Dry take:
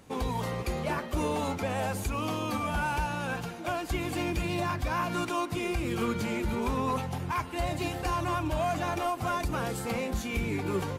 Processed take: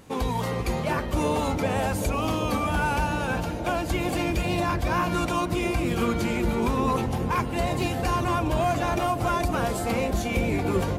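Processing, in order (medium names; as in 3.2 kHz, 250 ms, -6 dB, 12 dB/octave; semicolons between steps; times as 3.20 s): wow and flutter 19 cents; bucket-brigade echo 388 ms, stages 2048, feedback 84%, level -8 dB; trim +4.5 dB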